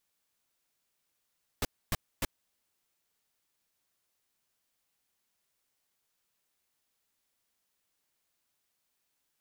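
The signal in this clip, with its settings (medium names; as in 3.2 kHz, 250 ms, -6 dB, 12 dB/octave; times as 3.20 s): noise bursts pink, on 0.03 s, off 0.27 s, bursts 3, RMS -29.5 dBFS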